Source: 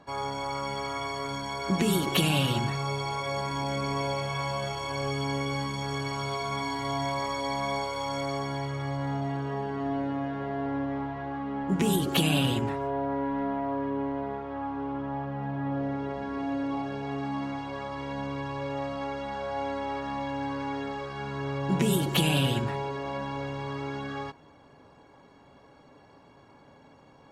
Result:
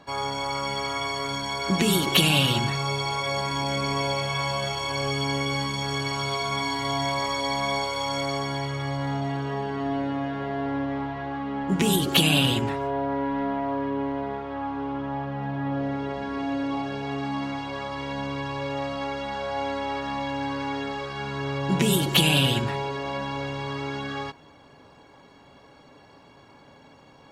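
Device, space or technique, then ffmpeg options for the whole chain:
presence and air boost: -af "equalizer=frequency=3600:width_type=o:width=1.8:gain=5.5,highshelf=frequency=9400:gain=4.5,volume=2.5dB"

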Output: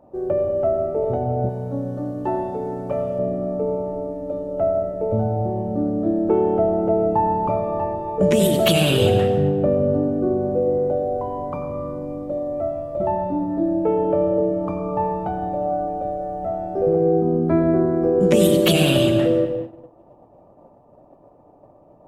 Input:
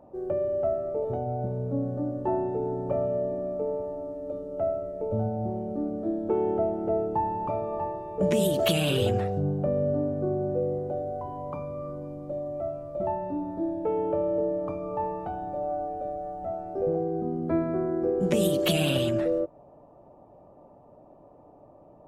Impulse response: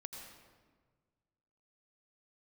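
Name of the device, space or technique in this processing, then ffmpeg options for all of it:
keyed gated reverb: -filter_complex "[0:a]asplit=3[link_01][link_02][link_03];[1:a]atrim=start_sample=2205[link_04];[link_02][link_04]afir=irnorm=-1:irlink=0[link_05];[link_03]apad=whole_len=973438[link_06];[link_05][link_06]sidechaingate=range=-33dB:threshold=-50dB:ratio=16:detection=peak,volume=7.5dB[link_07];[link_01][link_07]amix=inputs=2:normalize=0,asettb=1/sr,asplit=3[link_08][link_09][link_10];[link_08]atrim=end=1.494[link_11];[link_09]atrim=start=1.49:end=3.19,asetpts=PTS-STARTPTS,afade=type=in:duration=0.004:curve=qsin,afade=type=out:start_time=1.696:duration=0.004:curve=qsin,tiltshelf=frequency=1300:gain=-6[link_12];[link_10]atrim=start=3.186[link_13];[link_11][link_12]acrossfade=duration=0.004:curve1=hsin:curve2=qsin[link_14];[link_14][link_13]acrossfade=duration=0.004:curve1=qsin:curve2=hsin"

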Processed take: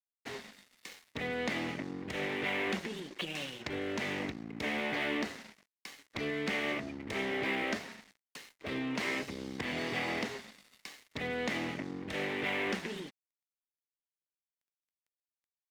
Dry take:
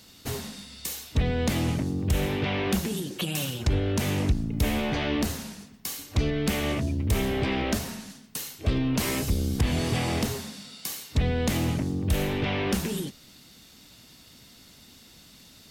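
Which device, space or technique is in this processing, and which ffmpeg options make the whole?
pocket radio on a weak battery: -af "highpass=270,lowpass=4200,aeval=exprs='sgn(val(0))*max(abs(val(0))-0.00562,0)':channel_layout=same,equalizer=frequency=2000:width_type=o:width=0.48:gain=8.5,volume=-4.5dB"

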